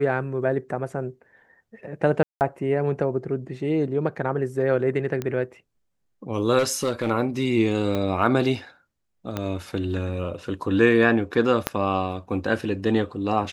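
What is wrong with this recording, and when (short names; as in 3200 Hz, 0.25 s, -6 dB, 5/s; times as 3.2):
2.23–2.41 gap 0.179 s
5.22 pop -15 dBFS
6.58–7.1 clipped -17.5 dBFS
7.95 pop -14 dBFS
9.37 pop -13 dBFS
11.67 pop -5 dBFS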